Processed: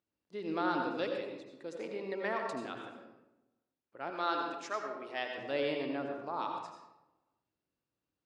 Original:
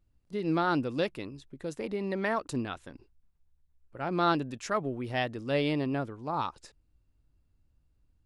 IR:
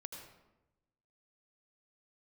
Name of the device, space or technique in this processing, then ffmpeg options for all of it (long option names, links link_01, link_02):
supermarket ceiling speaker: -filter_complex "[0:a]highpass=310,lowpass=6300[link_01];[1:a]atrim=start_sample=2205[link_02];[link_01][link_02]afir=irnorm=-1:irlink=0,asettb=1/sr,asplit=3[link_03][link_04][link_05];[link_03]atrim=end=4.104[link_06];[link_04]atrim=start=4.1:end=5.38,asetpts=PTS-STARTPTS,afade=type=in:duration=0.004:curve=qsin,afade=type=out:start_time=1.276:duration=0.004:curve=qsin,highpass=frequency=550:poles=1[link_07];[link_05]atrim=start=5.376[link_08];[link_06][link_07]acrossfade=duration=0.004:curve1=hsin:curve2=qsin[link_09];[link_09][link_08]acrossfade=duration=0.004:curve1=qsin:curve2=hsin"